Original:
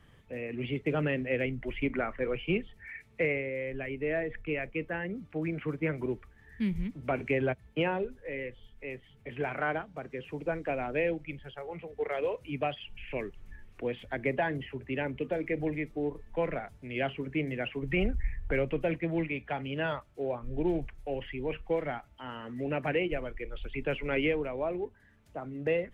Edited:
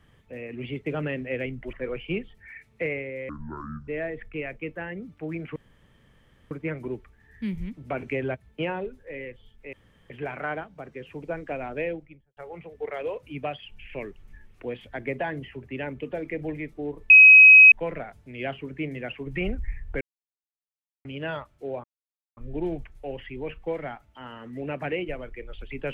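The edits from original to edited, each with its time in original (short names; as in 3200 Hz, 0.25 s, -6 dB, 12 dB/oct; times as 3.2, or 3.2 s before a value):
1.73–2.12 cut
3.68–4.01 speed 56%
5.69 insert room tone 0.95 s
8.91–9.28 room tone
10.97–11.55 studio fade out
16.28 add tone 2540 Hz -7 dBFS 0.62 s
18.57–19.61 mute
20.4 insert silence 0.53 s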